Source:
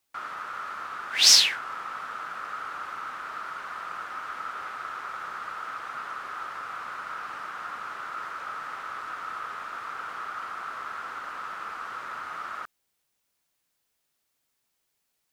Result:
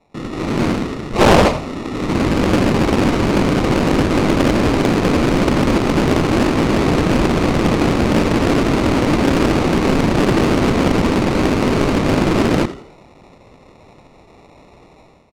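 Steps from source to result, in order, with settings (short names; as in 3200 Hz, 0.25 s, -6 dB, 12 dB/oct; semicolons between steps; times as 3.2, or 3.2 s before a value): HPF 1300 Hz 12 dB/oct; high shelf 11000 Hz +11.5 dB; AGC gain up to 14.5 dB; sample-and-hold 28×; air absorption 71 m; frequency-shifting echo 84 ms, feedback 38%, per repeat +40 Hz, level -14 dB; maximiser +11.5 dB; Doppler distortion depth 0.86 ms; gain -1 dB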